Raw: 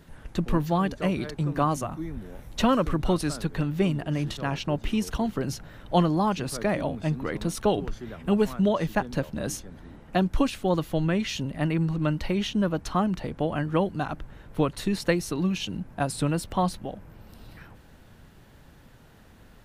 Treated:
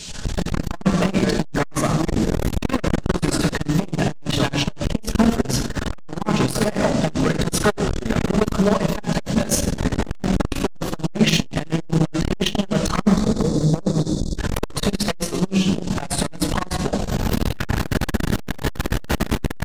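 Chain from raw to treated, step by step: 5.65–6.1 median filter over 9 samples; recorder AGC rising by 45 dB/s; 8.01–8.92 notches 50/100/150/200/250/300/350 Hz; 15.27–15.68 gate -21 dBFS, range -9 dB; band noise 2500–7900 Hz -44 dBFS; 13.05–14.38 spectral delete 560–3400 Hz; wavefolder -18 dBFS; shoebox room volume 1200 m³, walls mixed, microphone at 1.4 m; core saturation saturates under 290 Hz; gain +7 dB

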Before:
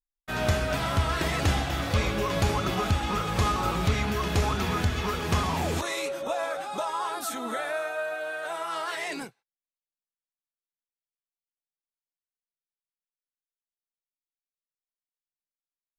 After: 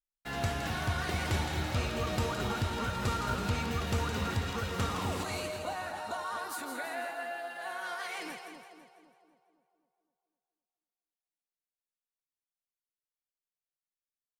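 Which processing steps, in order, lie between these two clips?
varispeed +11%; on a send: split-band echo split 960 Hz, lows 0.255 s, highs 0.165 s, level -6.5 dB; on the sum: gain -7.5 dB

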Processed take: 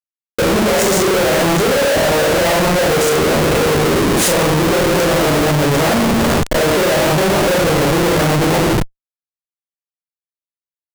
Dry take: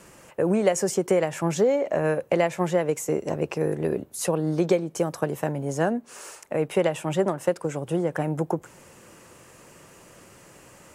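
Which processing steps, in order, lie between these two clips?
Schroeder reverb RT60 0.77 s, combs from 27 ms, DRR -7 dB; Schmitt trigger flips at -28.5 dBFS; gain +5.5 dB

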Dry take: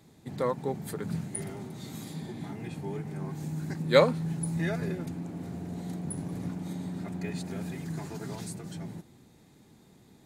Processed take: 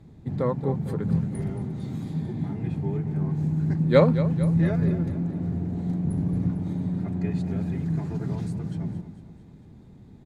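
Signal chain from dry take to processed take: RIAA curve playback; on a send: feedback echo 0.225 s, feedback 57%, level -13.5 dB

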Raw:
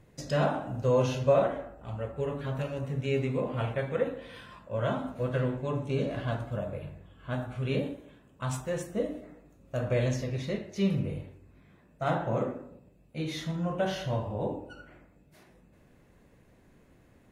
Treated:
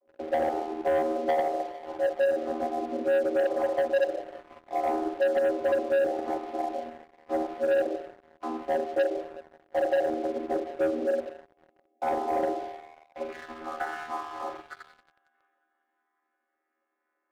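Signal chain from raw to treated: chord vocoder bare fifth, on D#3; dynamic EQ 480 Hz, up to +4 dB, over -38 dBFS, Q 0.95; BPF 270–2200 Hz; compressor 4:1, threshold -33 dBFS, peak gain reduction 12.5 dB; band-pass sweep 450 Hz -> 1500 Hz, 12.45–13.53; frequency shift +85 Hz; thin delay 0.181 s, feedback 78%, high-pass 1700 Hz, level -9 dB; on a send at -17 dB: reverb RT60 0.45 s, pre-delay 0.1 s; on the sum: sample leveller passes 3; gain +6.5 dB

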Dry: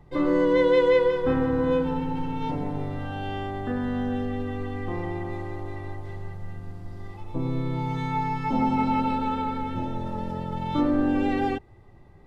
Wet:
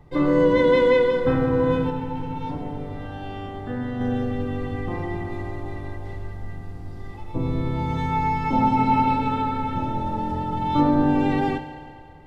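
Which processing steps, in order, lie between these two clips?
octaver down 1 oct, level -5 dB; 1.9–4.01 flange 1.5 Hz, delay 6.2 ms, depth 6.8 ms, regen +85%; FDN reverb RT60 2.4 s, low-frequency decay 0.7×, high-frequency decay 0.8×, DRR 7 dB; gain +2 dB

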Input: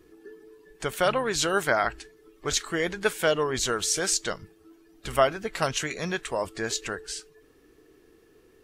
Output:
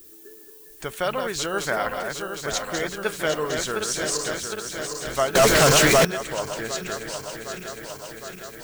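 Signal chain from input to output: regenerating reverse delay 0.38 s, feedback 81%, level -6 dB; added noise violet -46 dBFS; 5.35–6.05 sample leveller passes 5; gain -2 dB

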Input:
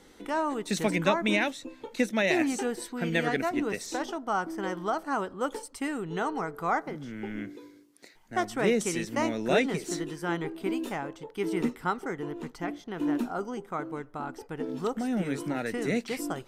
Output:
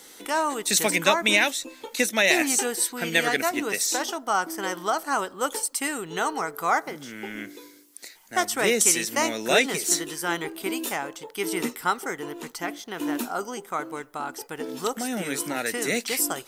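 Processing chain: RIAA curve recording; gain +5 dB

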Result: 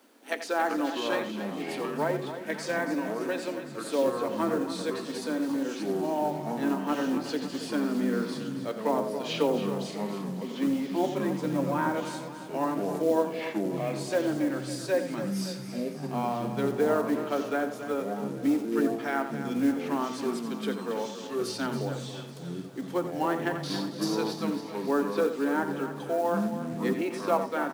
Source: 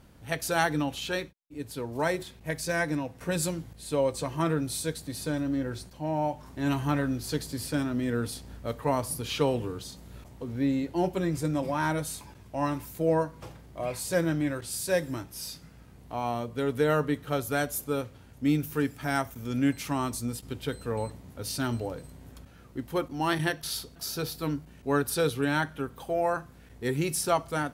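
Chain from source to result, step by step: octaver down 1 oct, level -2 dB; steep high-pass 230 Hz 72 dB/oct; treble ducked by the level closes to 1300 Hz, closed at -23.5 dBFS; companded quantiser 6-bit; on a send: feedback echo 0.276 s, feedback 54%, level -11 dB; on the sum: echoes that change speed 0.25 s, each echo -6 st, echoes 2, each echo -6 dB; outdoor echo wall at 15 m, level -10 dB

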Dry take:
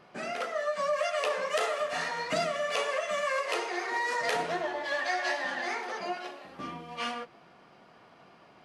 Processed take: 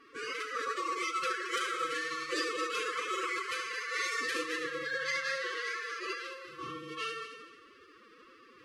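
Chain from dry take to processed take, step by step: in parallel at -1 dB: compressor, threshold -39 dBFS, peak gain reduction 13.5 dB; on the sum: multi-head echo 74 ms, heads first and third, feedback 44%, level -11 dB; FFT band-reject 280–560 Hz; formant-preserving pitch shift +11 st; gain -5.5 dB

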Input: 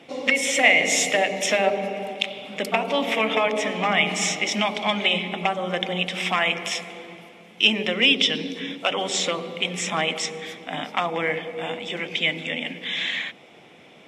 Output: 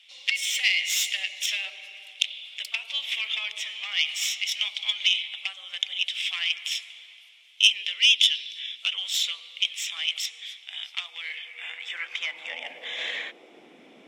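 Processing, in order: tracing distortion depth 0.057 ms; 11.55–12.99 compressor 2:1, threshold -27 dBFS, peak gain reduction 5.5 dB; high-pass sweep 3200 Hz -> 260 Hz, 11.28–13.7; gain -5 dB

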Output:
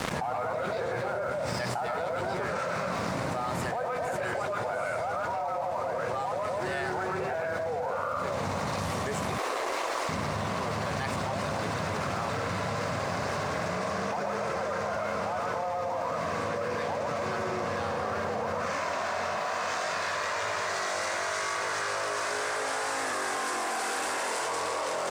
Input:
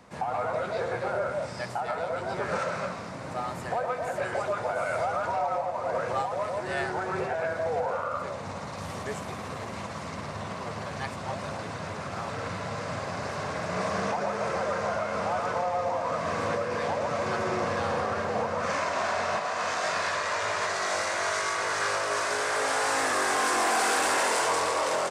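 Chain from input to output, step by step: 9.38–10.09 steep high-pass 310 Hz 48 dB/oct; crossover distortion -52.5 dBFS; fast leveller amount 100%; gain -7 dB

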